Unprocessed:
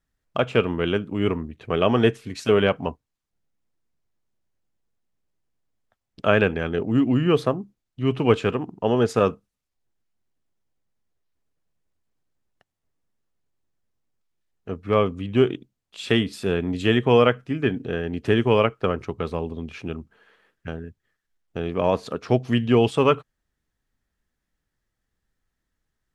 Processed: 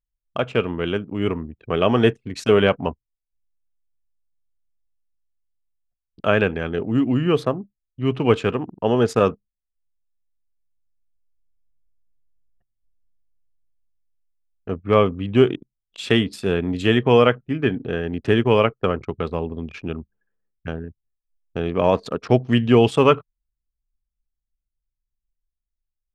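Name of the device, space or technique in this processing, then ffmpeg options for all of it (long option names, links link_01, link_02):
voice memo with heavy noise removal: -af "anlmdn=0.398,dynaudnorm=framelen=480:gausssize=7:maxgain=13.5dB,volume=-1dB"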